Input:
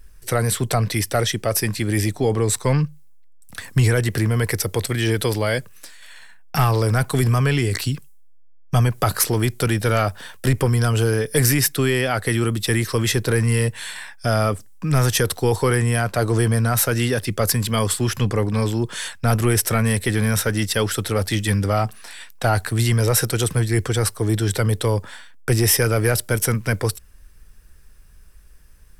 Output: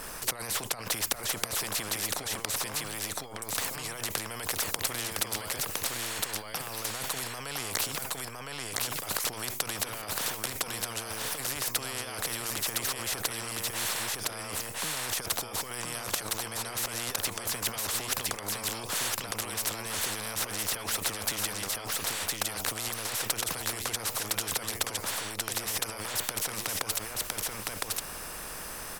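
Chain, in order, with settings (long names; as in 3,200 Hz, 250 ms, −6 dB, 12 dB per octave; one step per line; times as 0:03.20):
flat-topped bell 770 Hz +11 dB
compressor whose output falls as the input rises −26 dBFS, ratio −1
single-tap delay 1,011 ms −5.5 dB
every bin compressed towards the loudest bin 4 to 1
level −4 dB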